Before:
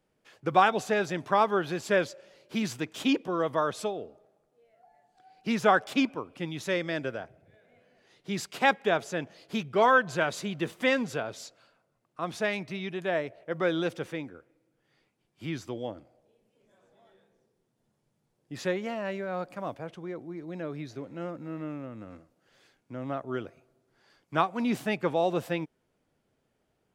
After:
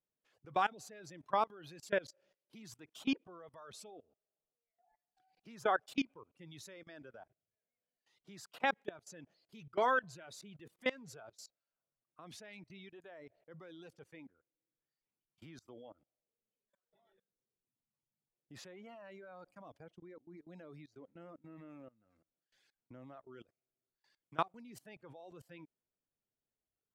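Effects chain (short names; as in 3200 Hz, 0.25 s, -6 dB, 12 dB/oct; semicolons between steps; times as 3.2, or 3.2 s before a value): reverb removal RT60 1.9 s; level quantiser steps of 23 dB; gain -6.5 dB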